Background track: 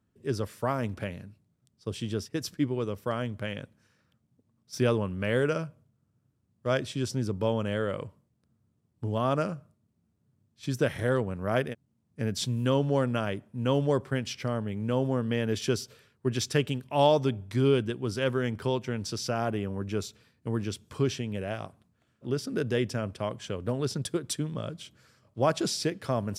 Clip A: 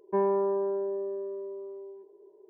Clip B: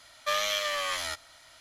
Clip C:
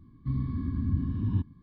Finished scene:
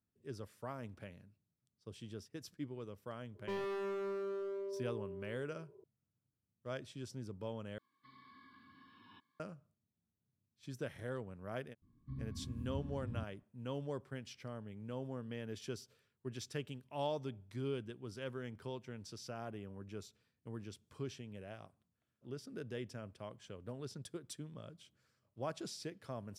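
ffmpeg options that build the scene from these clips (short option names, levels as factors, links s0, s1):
-filter_complex "[3:a]asplit=2[s0][s1];[0:a]volume=0.158[s2];[1:a]asoftclip=type=hard:threshold=0.0237[s3];[s0]highpass=1400[s4];[s2]asplit=2[s5][s6];[s5]atrim=end=7.784[s7];[s4]atrim=end=1.62,asetpts=PTS-STARTPTS,volume=0.794[s8];[s6]atrim=start=9.396[s9];[s3]atrim=end=2.49,asetpts=PTS-STARTPTS,volume=0.531,afade=t=in:d=0.004:c=hsin,afade=t=out:st=2.486:d=0.004:c=hsin,adelay=3350[s10];[s1]atrim=end=1.62,asetpts=PTS-STARTPTS,volume=0.168,afade=t=in:d=0.004:c=hsin,afade=t=out:st=1.616:d=0.004:c=hsin,adelay=11820[s11];[s7][s8]acrossfade=d=0.004:c1=hsin:c2=hsin[s12];[s12][s9]acrossfade=d=0.004:c1=hsin:c2=hsin[s13];[s13][s10][s11]amix=inputs=3:normalize=0"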